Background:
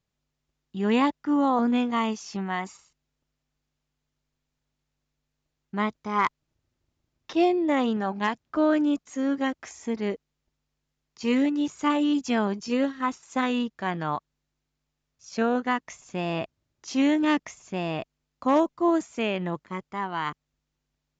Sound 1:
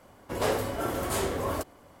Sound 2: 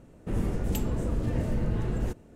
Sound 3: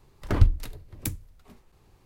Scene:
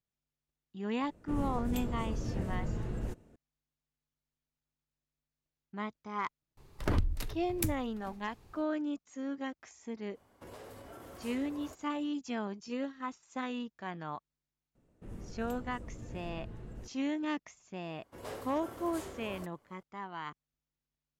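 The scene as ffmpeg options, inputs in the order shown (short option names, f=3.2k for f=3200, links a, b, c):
-filter_complex "[2:a]asplit=2[a][b];[1:a]asplit=2[c][d];[0:a]volume=-12dB[e];[3:a]acompressor=threshold=-24dB:ratio=6:attack=3.2:release=140:knee=1:detection=peak[f];[c]acompressor=threshold=-34dB:ratio=6:attack=3.2:release=140:knee=1:detection=peak[g];[a]atrim=end=2.35,asetpts=PTS-STARTPTS,volume=-7.5dB,afade=t=in:d=0.004:c=hsin,afade=t=out:st=2.346:d=0.004:c=hsin,adelay=1010[h];[f]atrim=end=2.05,asetpts=PTS-STARTPTS,afade=t=in:d=0.004:c=hsin,afade=t=out:st=2.046:d=0.004:c=hsin,adelay=6570[i];[g]atrim=end=2,asetpts=PTS-STARTPTS,volume=-12dB,afade=t=in:d=0.05,afade=t=out:st=1.95:d=0.05,adelay=10120[j];[b]atrim=end=2.35,asetpts=PTS-STARTPTS,volume=-17dB,afade=t=in:d=0.004:c=hsin,afade=t=out:st=2.346:d=0.004:c=hsin,adelay=14750[k];[d]atrim=end=2,asetpts=PTS-STARTPTS,volume=-16dB,afade=t=in:d=0.004:c=hsin,afade=t=out:st=1.996:d=0.004:c=hsin,adelay=17830[l];[e][h][i][j][k][l]amix=inputs=6:normalize=0"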